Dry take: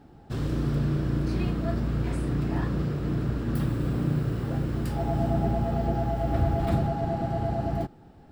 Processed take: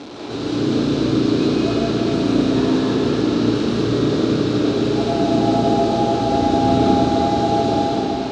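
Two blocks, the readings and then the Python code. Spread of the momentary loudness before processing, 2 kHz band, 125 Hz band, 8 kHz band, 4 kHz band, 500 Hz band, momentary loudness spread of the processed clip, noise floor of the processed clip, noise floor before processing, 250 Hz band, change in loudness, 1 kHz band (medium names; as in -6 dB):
4 LU, +11.0 dB, +1.5 dB, no reading, +20.5 dB, +13.5 dB, 3 LU, -25 dBFS, -51 dBFS, +13.0 dB, +10.0 dB, +13.0 dB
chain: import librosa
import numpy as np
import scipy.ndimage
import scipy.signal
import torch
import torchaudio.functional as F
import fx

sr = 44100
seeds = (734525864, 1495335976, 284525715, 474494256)

y = fx.delta_mod(x, sr, bps=64000, step_db=-34.0)
y = fx.cabinet(y, sr, low_hz=140.0, low_slope=12, high_hz=6200.0, hz=(150.0, 280.0, 420.0, 1900.0, 3900.0), db=(-9, 7, 8, -6, 8))
y = fx.rev_freeverb(y, sr, rt60_s=4.1, hf_ratio=0.8, predelay_ms=70, drr_db=-6.5)
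y = F.gain(torch.from_numpy(y), 3.5).numpy()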